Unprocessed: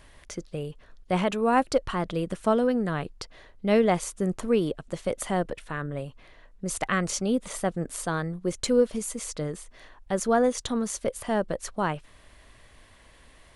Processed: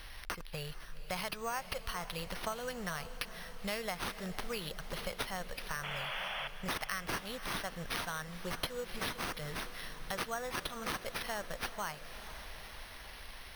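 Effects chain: amplifier tone stack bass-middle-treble 10-0-10; careless resampling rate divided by 6×, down none, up hold; painted sound noise, 5.83–6.48 s, 530–3500 Hz -43 dBFS; compression 4:1, threshold -47 dBFS, peak gain reduction 17 dB; echo that smears into a reverb 484 ms, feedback 67%, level -13 dB; trim +10 dB

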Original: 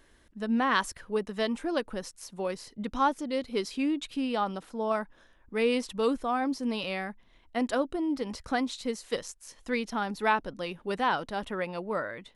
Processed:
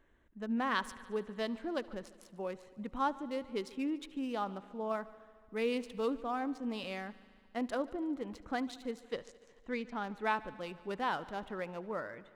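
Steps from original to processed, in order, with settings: local Wiener filter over 9 samples; 4.89–6.05 s: short-mantissa float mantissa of 6-bit; 9.12–10.04 s: distance through air 71 m; on a send: multi-head delay 73 ms, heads first and second, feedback 67%, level -23 dB; on the sum: trim -7 dB

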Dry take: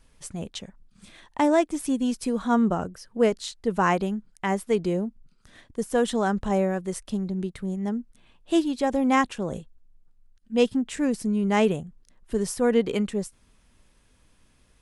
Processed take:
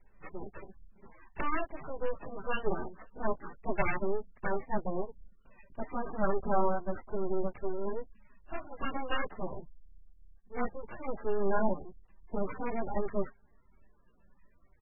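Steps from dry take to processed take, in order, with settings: 8.54–9.07 s: companding laws mixed up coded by A; comb 5.1 ms, depth 85%; chorus voices 6, 0.5 Hz, delay 13 ms, depth 3.3 ms; sample-and-hold 10×; full-wave rectifier; trim -4.5 dB; MP3 8 kbps 24 kHz

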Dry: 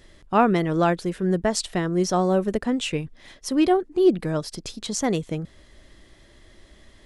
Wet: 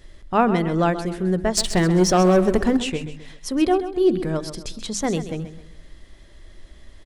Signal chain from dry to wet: bass shelf 70 Hz +11 dB; hum notches 50/100/150/200/250/300/350 Hz; 1.57–2.77 s: waveshaping leveller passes 2; on a send: feedback delay 131 ms, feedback 38%, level -12 dB

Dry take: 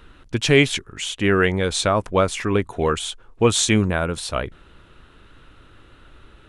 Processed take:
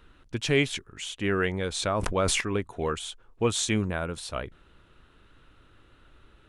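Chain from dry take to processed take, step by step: 1.71–2.41 s: decay stretcher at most 20 dB/s; trim -8.5 dB

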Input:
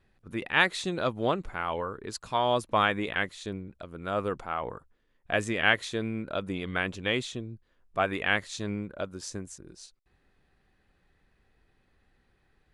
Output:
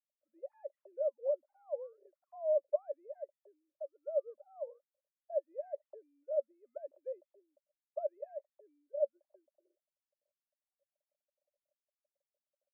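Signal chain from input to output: formants replaced by sine waves; compression 2:1, threshold -28 dBFS, peak gain reduction 5.5 dB; Butterworth band-pass 580 Hz, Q 7.6; trim +2.5 dB

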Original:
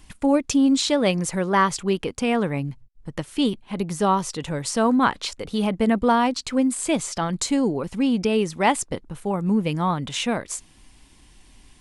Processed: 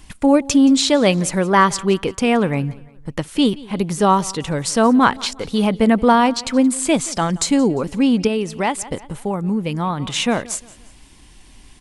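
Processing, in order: on a send: feedback delay 175 ms, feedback 40%, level -21.5 dB; 8.27–10.00 s: on the sum: compression 2:1, threshold -27 dBFS, peak gain reduction 7.5 dB; trim +5.5 dB

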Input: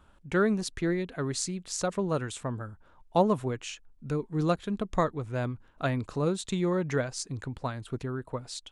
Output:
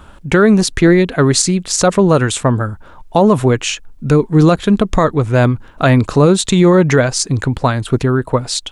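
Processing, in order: 0.87–2.61 s: expander -41 dBFS; loudness maximiser +21 dB; trim -1 dB

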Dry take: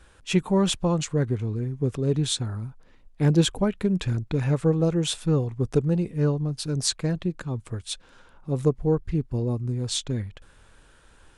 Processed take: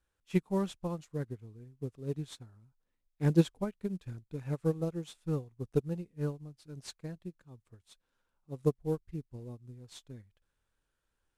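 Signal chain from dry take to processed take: CVSD coder 64 kbps; upward expansion 2.5:1, over -31 dBFS; trim -3 dB

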